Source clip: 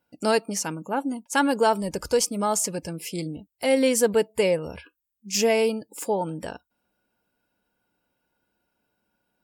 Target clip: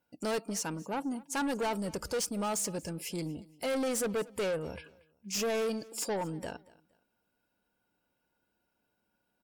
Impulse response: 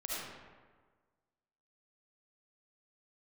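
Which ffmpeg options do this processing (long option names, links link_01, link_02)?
-filter_complex "[0:a]asoftclip=type=tanh:threshold=-24.5dB,asettb=1/sr,asplit=3[link_01][link_02][link_03];[link_01]atrim=end=5.714[link_04];[link_02]atrim=start=5.71:end=6.17,asetpts=PTS-STARTPTS,afade=type=in:duration=0.004:curve=qsin,afade=type=out:start_time=0.456:duration=0.004:curve=qsin,equalizer=frequency=5000:width=1.4:gain=13[link_05];[link_03]atrim=start=6.166[link_06];[link_04][link_05]acrossfade=duration=0.004:curve1=hsin:curve2=qsin[link_07];[link_07][link_06]acrossfade=duration=0.004:curve1=qsin:curve2=hsin,aecho=1:1:233|466:0.0794|0.0222,volume=-4dB"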